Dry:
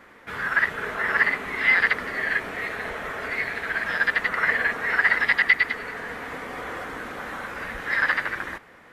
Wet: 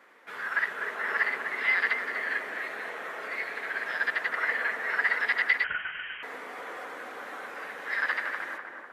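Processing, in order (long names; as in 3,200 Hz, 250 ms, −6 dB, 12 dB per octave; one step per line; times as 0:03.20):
high-pass filter 360 Hz 12 dB per octave
tape delay 249 ms, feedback 71%, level −4 dB, low-pass 1,500 Hz
0:05.64–0:06.23: voice inversion scrambler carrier 3,500 Hz
level −6.5 dB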